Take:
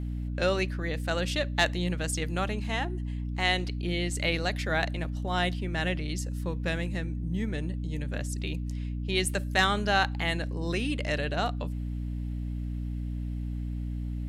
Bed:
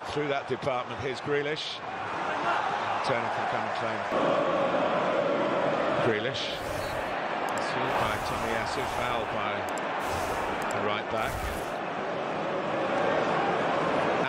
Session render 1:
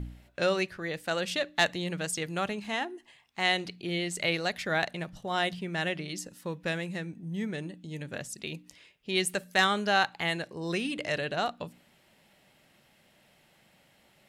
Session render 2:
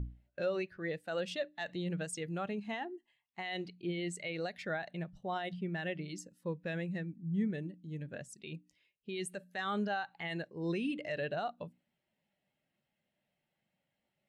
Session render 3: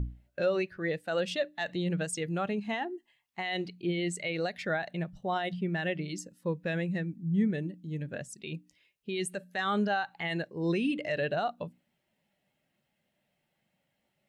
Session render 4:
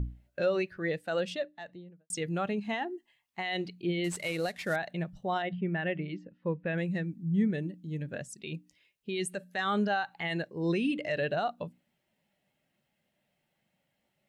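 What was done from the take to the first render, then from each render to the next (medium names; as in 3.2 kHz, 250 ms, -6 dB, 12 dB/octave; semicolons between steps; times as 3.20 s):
de-hum 60 Hz, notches 5
peak limiter -24 dBFS, peak gain reduction 11.5 dB; spectral contrast expander 1.5:1
trim +6 dB
1.03–2.10 s: studio fade out; 4.04–4.76 s: CVSD coder 64 kbps; 5.42–6.78 s: low-pass 2.8 kHz 24 dB/octave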